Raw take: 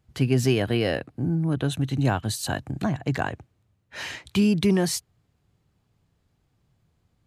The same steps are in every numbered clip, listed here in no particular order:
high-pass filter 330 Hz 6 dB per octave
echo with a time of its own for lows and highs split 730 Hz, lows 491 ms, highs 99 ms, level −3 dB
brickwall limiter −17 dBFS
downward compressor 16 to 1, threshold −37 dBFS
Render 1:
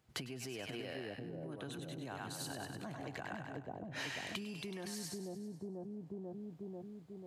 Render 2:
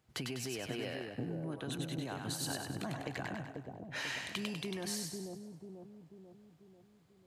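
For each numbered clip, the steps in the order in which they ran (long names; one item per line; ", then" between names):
echo with a time of its own for lows and highs, then brickwall limiter, then downward compressor, then high-pass filter
brickwall limiter, then high-pass filter, then downward compressor, then echo with a time of its own for lows and highs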